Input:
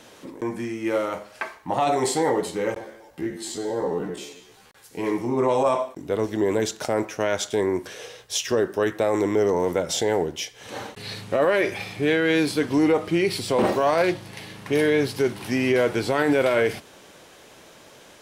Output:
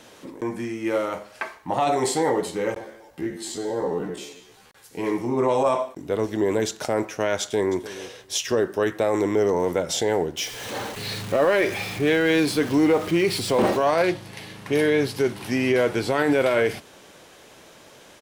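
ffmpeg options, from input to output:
-filter_complex "[0:a]asplit=2[a][b];[b]afade=t=in:st=7.41:d=0.01,afade=t=out:st=7.91:d=0.01,aecho=0:1:300|600:0.158489|0.0237734[c];[a][c]amix=inputs=2:normalize=0,asettb=1/sr,asplit=3[d][e][f];[d]atrim=end=10.374[g];[e]atrim=start=10.37:end=13.77,asetpts=PTS-STARTPTS,afade=t=in:d=0.004:c=qsin,afade=t=out:st=3.396:d=0.004:c=qsin,aeval=exprs='val(0)+0.5*0.0251*sgn(val(0))':c=same[h];[f]atrim=start=13.766[i];[g][h]acrossfade=d=0.004:c1=hsin:c2=qsin[j];[j][i]acrossfade=d=0.004:c1=qsin:c2=hsin"

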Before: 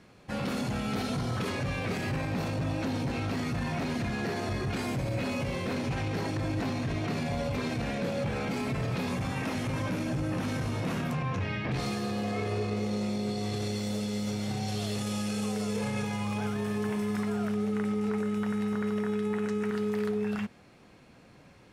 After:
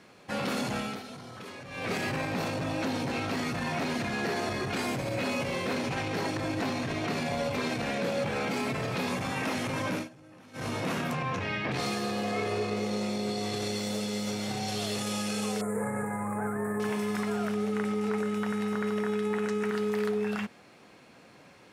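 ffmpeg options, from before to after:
-filter_complex "[0:a]asettb=1/sr,asplit=3[a][b][c];[a]atrim=end=15.614[d];[b]atrim=start=15.61:end=16.8,asetpts=PTS-STARTPTS,afade=t=in:d=0.004:c=qsin,afade=t=out:st=1.186:d=0.004:c=qsin,asuperstop=centerf=4000:order=12:qfactor=0.7[e];[c]atrim=start=16.796[f];[d][e]acrossfade=d=0.004:c1=hsin:c2=qsin[g];[g][f]acrossfade=d=0.004:c1=qsin:c2=hsin,asplit=5[h][i][j][k][l];[h]atrim=end=1.01,asetpts=PTS-STARTPTS,afade=t=out:st=0.78:d=0.23:silence=0.237137[m];[i]atrim=start=1.01:end=1.69,asetpts=PTS-STARTPTS,volume=-12.5dB[n];[j]atrim=start=1.69:end=10.09,asetpts=PTS-STARTPTS,afade=t=in:d=0.23:silence=0.237137,afade=t=out:st=8.28:d=0.12:silence=0.0841395[o];[k]atrim=start=10.09:end=10.53,asetpts=PTS-STARTPTS,volume=-21.5dB[p];[l]atrim=start=10.53,asetpts=PTS-STARTPTS,afade=t=in:d=0.12:silence=0.0841395[q];[m][n][o][p][q]concat=n=5:v=0:a=1,highpass=f=320:p=1,volume=4dB"

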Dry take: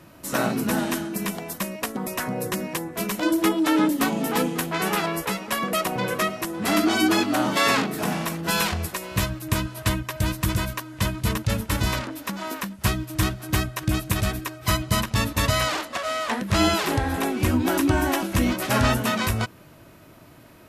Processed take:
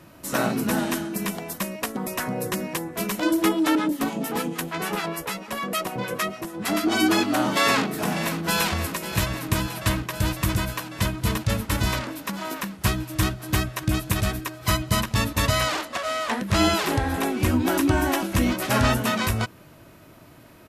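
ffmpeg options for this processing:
-filter_complex "[0:a]asettb=1/sr,asplit=3[a][b][c];[a]atrim=end=3.754[d];[b]atrim=start=3.75:end=6.92,asetpts=PTS-STARTPTS,afade=t=in:d=0.004:c=qsin,afade=t=out:st=3.166:d=0.004:c=qsin,acrossover=split=840[e][f];[e]aeval=exprs='val(0)*(1-0.7/2+0.7/2*cos(2*PI*6.7*n/s))':c=same[g];[f]aeval=exprs='val(0)*(1-0.7/2-0.7/2*cos(2*PI*6.7*n/s))':c=same[h];[g][h]amix=inputs=2:normalize=0[i];[c]atrim=start=6.916[j];[d][i]acrossfade=d=0.004:c1=hsin:c2=qsin[k];[k][j]acrossfade=d=0.004:c1=qsin:c2=hsin,asplit=2[l][m];[m]afade=t=in:st=7.61:d=0.01,afade=t=out:st=8.68:d=0.01,aecho=0:1:550|1100|1650|2200|2750|3300|3850|4400|4950|5500|6050|6600:0.281838|0.225471|0.180377|0.144301|0.115441|0.0923528|0.0738822|0.0591058|0.0472846|0.0378277|0.0302622|0.0242097[n];[l][n]amix=inputs=2:normalize=0"

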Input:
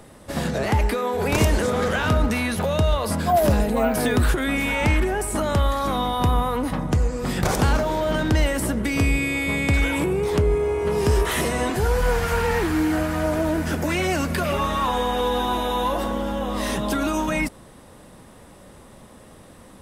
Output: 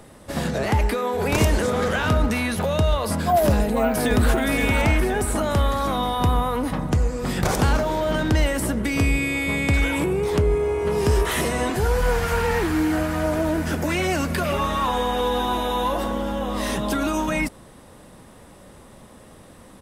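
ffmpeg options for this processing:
-filter_complex "[0:a]asplit=2[a][b];[b]afade=t=in:st=3.58:d=0.01,afade=t=out:st=4.29:d=0.01,aecho=0:1:520|1040|1560|2080|2600|3120|3640:0.562341|0.309288|0.170108|0.0935595|0.0514577|0.0283018|0.015566[c];[a][c]amix=inputs=2:normalize=0"

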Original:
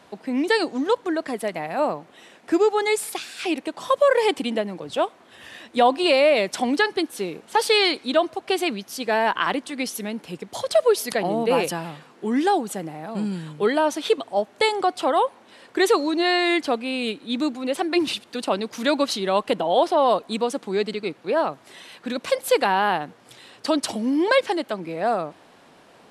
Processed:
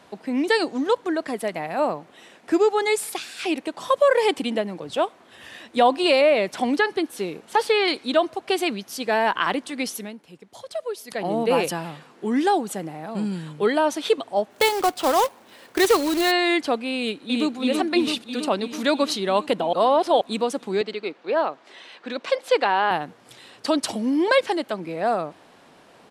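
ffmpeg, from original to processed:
-filter_complex "[0:a]asettb=1/sr,asplit=3[a][b][c];[a]atrim=end=6.214[d];[b]atrim=start=6.21:end=7.88,asetpts=PTS-STARTPTS,afade=t=in:d=0.004:c=qsin,afade=t=out:st=1.666:d=0.004:c=qsin,acrossover=split=2800[e][f];[f]acompressor=threshold=-34dB:ratio=4:attack=1:release=60[g];[e][g]amix=inputs=2:normalize=0[h];[c]atrim=start=7.876[i];[d][h]acrossfade=d=0.004:c1=hsin:c2=qsin[j];[j][i]acrossfade=d=0.004:c1=qsin:c2=hsin,asplit=3[k][l][m];[k]afade=t=out:st=14.5:d=0.02[n];[l]acrusher=bits=2:mode=log:mix=0:aa=0.000001,afade=t=in:st=14.5:d=0.02,afade=t=out:st=16.3:d=0.02[o];[m]afade=t=in:st=16.3:d=0.02[p];[n][o][p]amix=inputs=3:normalize=0,asplit=2[q][r];[r]afade=t=in:st=16.96:d=0.01,afade=t=out:st=17.55:d=0.01,aecho=0:1:330|660|990|1320|1650|1980|2310|2640|2970|3300|3630|3960:0.707946|0.495562|0.346893|0.242825|0.169978|0.118984|0.0832891|0.0583024|0.0408117|0.0285682|0.0199977|0.0139984[s];[q][s]amix=inputs=2:normalize=0,asettb=1/sr,asplit=3[t][u][v];[t]atrim=end=20.814[w];[u]atrim=start=20.81:end=22.91,asetpts=PTS-STARTPTS,afade=t=in:d=0.004:c=qsin,afade=t=out:st=2.096:d=0.004:c=qsin,highpass=310,lowpass=4.9k[x];[v]atrim=start=22.906[y];[w][x]acrossfade=d=0.004:c1=hsin:c2=qsin[z];[z][y]acrossfade=d=0.004:c1=qsin:c2=hsin,asplit=5[aa][ab][ac][ad][ae];[aa]atrim=end=10.18,asetpts=PTS-STARTPTS,afade=t=out:st=9.91:d=0.27:silence=0.251189[af];[ab]atrim=start=10.18:end=11.07,asetpts=PTS-STARTPTS,volume=-12dB[ag];[ac]atrim=start=11.07:end=19.732,asetpts=PTS-STARTPTS,afade=t=in:d=0.27:silence=0.251189[ah];[ad]atrim=start=19.728:end=20.212,asetpts=PTS-STARTPTS,areverse[ai];[ae]atrim=start=20.208[aj];[af][ag][ah]concat=n=3:v=0:a=1[ak];[ak][ai]acrossfade=d=0.004:c1=hsin:c2=hsin[al];[al][aj]acrossfade=d=0.004:c1=hsin:c2=hsin"

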